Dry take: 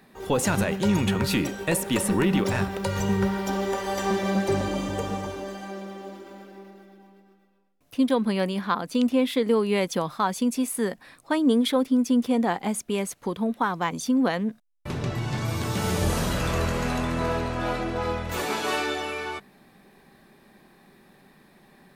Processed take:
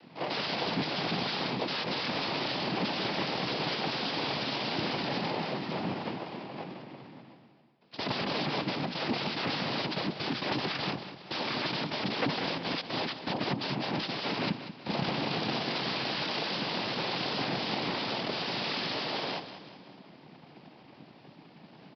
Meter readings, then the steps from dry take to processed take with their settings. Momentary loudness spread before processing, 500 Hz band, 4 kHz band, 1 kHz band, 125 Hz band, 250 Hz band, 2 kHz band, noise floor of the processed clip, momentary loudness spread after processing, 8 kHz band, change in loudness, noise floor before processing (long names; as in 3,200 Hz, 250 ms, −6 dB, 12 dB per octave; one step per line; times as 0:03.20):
10 LU, −8.5 dB, +3.5 dB, −4.5 dB, −9.0 dB, −10.5 dB, −2.5 dB, −55 dBFS, 7 LU, −20.5 dB, −6.5 dB, −58 dBFS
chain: samples in bit-reversed order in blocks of 32 samples
mains-hum notches 60/120/180/240/300/360/420/480 Hz
in parallel at −2.5 dB: brickwall limiter −23 dBFS, peak gain reduction 12 dB
on the sum: wrap-around overflow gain 22 dB
cochlear-implant simulation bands 4
on a send: repeating echo 188 ms, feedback 48%, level −12 dB
on the sum: downsampling to 11,025 Hz
frequency shifter +27 Hz